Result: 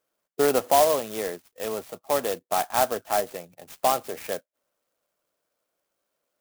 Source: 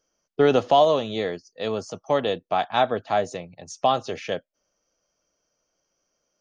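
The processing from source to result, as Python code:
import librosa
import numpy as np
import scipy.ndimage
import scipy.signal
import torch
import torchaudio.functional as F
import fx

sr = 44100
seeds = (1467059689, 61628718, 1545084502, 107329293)

y = fx.highpass(x, sr, hz=460.0, slope=6)
y = fx.high_shelf(y, sr, hz=5100.0, db=-8.5)
y = fx.clock_jitter(y, sr, seeds[0], jitter_ms=0.072)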